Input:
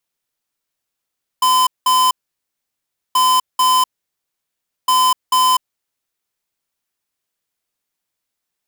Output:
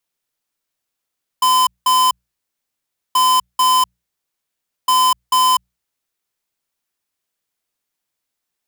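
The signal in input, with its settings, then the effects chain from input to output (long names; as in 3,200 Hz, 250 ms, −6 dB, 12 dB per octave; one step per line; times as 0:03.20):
beeps in groups square 1,020 Hz, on 0.25 s, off 0.19 s, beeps 2, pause 1.04 s, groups 3, −13 dBFS
mains-hum notches 60/120/180 Hz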